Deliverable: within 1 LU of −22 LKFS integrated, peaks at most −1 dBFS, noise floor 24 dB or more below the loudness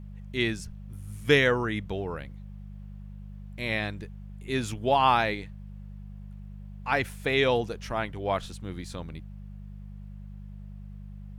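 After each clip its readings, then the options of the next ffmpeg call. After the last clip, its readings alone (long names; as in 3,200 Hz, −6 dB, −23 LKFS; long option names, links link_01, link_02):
mains hum 50 Hz; hum harmonics up to 200 Hz; level of the hum −40 dBFS; integrated loudness −28.0 LKFS; sample peak −9.5 dBFS; target loudness −22.0 LKFS
→ -af "bandreject=frequency=50:width_type=h:width=4,bandreject=frequency=100:width_type=h:width=4,bandreject=frequency=150:width_type=h:width=4,bandreject=frequency=200:width_type=h:width=4"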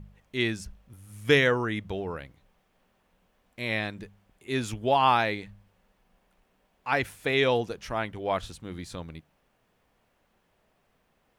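mains hum none found; integrated loudness −27.5 LKFS; sample peak −9.0 dBFS; target loudness −22.0 LKFS
→ -af "volume=5.5dB"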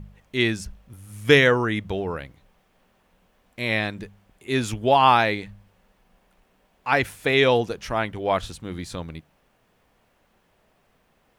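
integrated loudness −22.0 LKFS; sample peak −3.5 dBFS; background noise floor −65 dBFS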